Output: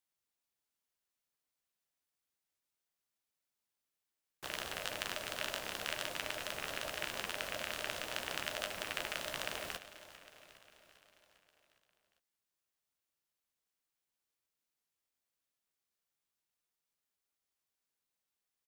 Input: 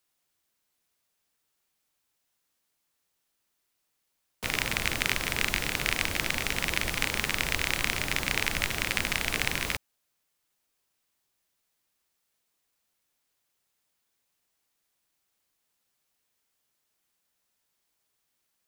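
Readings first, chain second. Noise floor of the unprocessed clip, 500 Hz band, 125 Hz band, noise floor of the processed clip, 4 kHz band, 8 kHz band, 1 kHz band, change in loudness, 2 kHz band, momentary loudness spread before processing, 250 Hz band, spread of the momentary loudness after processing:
-78 dBFS, -5.0 dB, -18.5 dB, under -85 dBFS, -9.5 dB, -11.5 dB, -7.5 dB, -11.5 dB, -12.5 dB, 2 LU, -14.5 dB, 11 LU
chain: feedback echo 0.403 s, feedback 59%, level -15 dB; flange 0.8 Hz, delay 9.4 ms, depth 7.1 ms, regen -40%; ring modulator 610 Hz; gain -5 dB

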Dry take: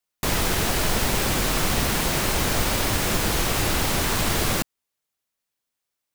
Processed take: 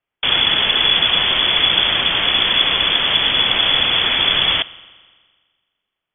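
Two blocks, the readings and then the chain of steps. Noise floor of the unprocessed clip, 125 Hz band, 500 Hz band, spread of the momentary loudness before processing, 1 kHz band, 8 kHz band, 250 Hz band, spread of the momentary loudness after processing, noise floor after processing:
-83 dBFS, -8.0 dB, -1.0 dB, 1 LU, +3.0 dB, under -40 dB, -4.5 dB, 2 LU, -83 dBFS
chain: spring tank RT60 1.6 s, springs 42 ms, chirp 55 ms, DRR 18.5 dB; inverted band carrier 3400 Hz; gain +6.5 dB

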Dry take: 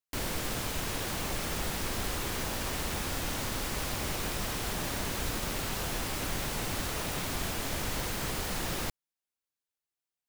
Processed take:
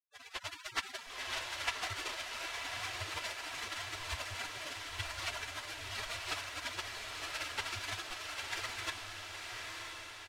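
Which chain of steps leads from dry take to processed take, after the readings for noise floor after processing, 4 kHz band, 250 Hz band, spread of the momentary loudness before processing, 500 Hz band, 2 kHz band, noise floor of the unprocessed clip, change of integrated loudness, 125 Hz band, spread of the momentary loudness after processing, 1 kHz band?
-52 dBFS, -2.5 dB, -18.5 dB, 0 LU, -11.0 dB, -1.5 dB, under -85 dBFS, -6.5 dB, -14.0 dB, 5 LU, -5.0 dB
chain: spectral gate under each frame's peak -30 dB weak; in parallel at -4 dB: soft clip -37.5 dBFS, distortion -20 dB; on the sum: LPF 2400 Hz 12 dB/oct; comb 3 ms, depth 35%; on a send: diffused feedback echo 1.012 s, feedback 58%, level -3 dB; on the sum: AGC gain up to 11 dB; resonant low shelf 130 Hz +11 dB, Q 3; gain +8 dB

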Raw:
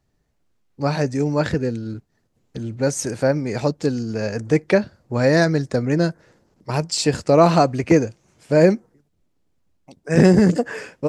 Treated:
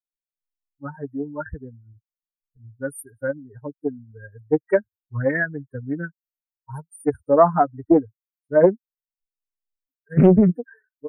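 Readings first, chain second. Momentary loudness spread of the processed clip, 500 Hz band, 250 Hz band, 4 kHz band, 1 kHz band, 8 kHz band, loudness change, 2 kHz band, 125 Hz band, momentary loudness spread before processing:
22 LU, -2.5 dB, -3.0 dB, under -30 dB, -1.0 dB, under -15 dB, -2.0 dB, -3.5 dB, -5.5 dB, 13 LU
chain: per-bin expansion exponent 3; brick-wall FIR band-stop 1900–8700 Hz; Doppler distortion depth 0.49 ms; gain +4 dB

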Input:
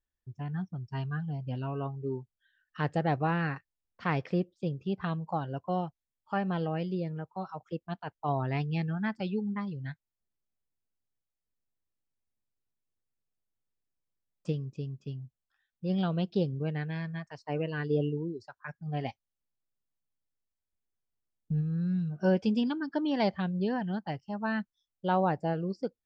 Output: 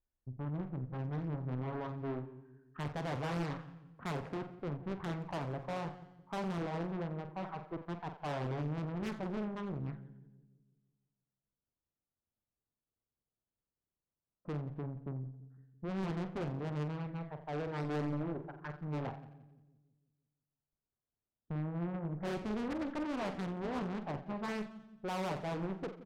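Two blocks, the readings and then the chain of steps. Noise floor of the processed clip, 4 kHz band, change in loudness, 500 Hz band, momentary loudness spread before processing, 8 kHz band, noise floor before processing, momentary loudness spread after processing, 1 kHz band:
under -85 dBFS, -6.0 dB, -7.0 dB, -6.5 dB, 12 LU, n/a, under -85 dBFS, 8 LU, -7.0 dB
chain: Wiener smoothing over 15 samples; LPF 1600 Hz 24 dB/oct; tube stage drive 38 dB, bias 0.5; doubler 47 ms -9 dB; on a send: split-band echo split 390 Hz, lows 0.168 s, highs 88 ms, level -13 dB; on the sum: Doppler distortion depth 1 ms; gain +2.5 dB

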